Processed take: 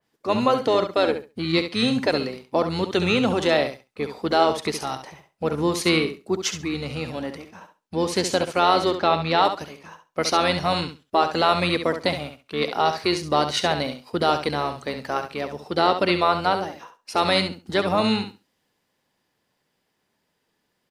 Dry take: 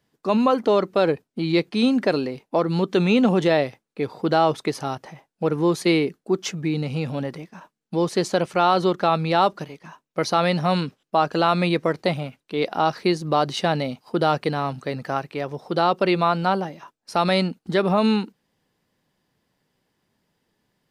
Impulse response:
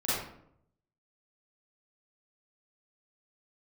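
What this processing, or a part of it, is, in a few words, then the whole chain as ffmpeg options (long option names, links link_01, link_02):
octave pedal: -filter_complex "[0:a]asplit=2[link_01][link_02];[link_02]asetrate=22050,aresample=44100,atempo=2,volume=-9dB[link_03];[link_01][link_03]amix=inputs=2:normalize=0,asettb=1/sr,asplit=3[link_04][link_05][link_06];[link_04]atrim=end=8.974[link_07];[link_05]atrim=start=8.97:end=9.45,asetpts=PTS-STARTPTS,afade=type=in:duration=0.004:curve=qsin,afade=type=out:start_time=0.476:duration=0.004:curve=qsin,lowpass=5700[link_08];[link_06]atrim=start=9.446[link_09];[link_07][link_08]acrossfade=duration=0.004:curve1=hsin:curve2=qsin[link_10];[link_10][link_09]acrossfade=duration=0.004:curve1=qsin:curve2=hsin,lowshelf=frequency=220:gain=-10.5,aecho=1:1:68|136|204:0.355|0.0603|0.0103,adynamicequalizer=threshold=0.0141:dfrequency=2700:dqfactor=0.7:tfrequency=2700:tqfactor=0.7:attack=5:release=100:ratio=0.375:range=2.5:mode=boostabove:tftype=highshelf"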